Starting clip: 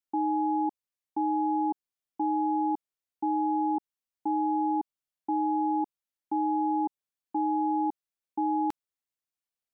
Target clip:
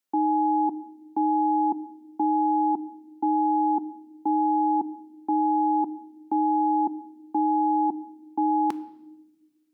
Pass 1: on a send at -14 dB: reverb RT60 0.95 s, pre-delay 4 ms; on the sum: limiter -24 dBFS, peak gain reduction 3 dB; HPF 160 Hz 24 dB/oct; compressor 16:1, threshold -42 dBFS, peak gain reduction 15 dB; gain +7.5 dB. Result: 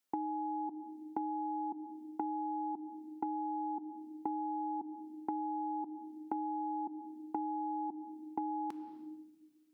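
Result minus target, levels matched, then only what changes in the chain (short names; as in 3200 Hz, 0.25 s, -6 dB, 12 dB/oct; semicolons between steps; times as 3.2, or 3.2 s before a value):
compressor: peak gain reduction +15 dB
remove: compressor 16:1, threshold -42 dBFS, peak gain reduction 15 dB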